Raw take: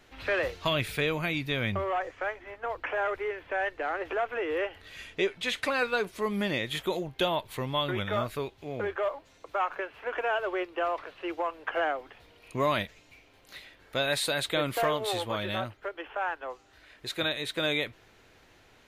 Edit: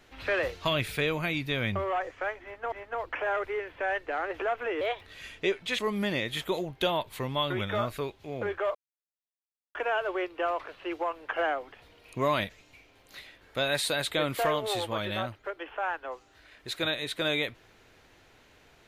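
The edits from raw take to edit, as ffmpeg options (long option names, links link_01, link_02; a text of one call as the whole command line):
ffmpeg -i in.wav -filter_complex "[0:a]asplit=7[link_01][link_02][link_03][link_04][link_05][link_06][link_07];[link_01]atrim=end=2.722[link_08];[link_02]atrim=start=2.428:end=4.524[link_09];[link_03]atrim=start=4.52:end=4.77,asetpts=PTS-STARTPTS,asetrate=52920,aresample=44100[link_10];[link_04]atrim=start=4.766:end=5.542[link_11];[link_05]atrim=start=6.168:end=9.13,asetpts=PTS-STARTPTS,afade=type=out:start_time=2.958:duration=0.004:curve=hsin[link_12];[link_06]atrim=start=9.13:end=10.13,asetpts=PTS-STARTPTS,volume=0[link_13];[link_07]atrim=start=10.13,asetpts=PTS-STARTPTS,afade=type=in:duration=0.004:curve=hsin[link_14];[link_08][link_09]acrossfade=duration=0.004:curve1=hsin:curve2=hsin[link_15];[link_15][link_10]acrossfade=duration=0.004:curve1=hsin:curve2=hsin[link_16];[link_16][link_11]acrossfade=duration=0.004:curve1=hsin:curve2=hsin[link_17];[link_12][link_13][link_14]concat=n=3:v=0:a=1[link_18];[link_17][link_18]acrossfade=duration=0.004:curve1=hsin:curve2=hsin" out.wav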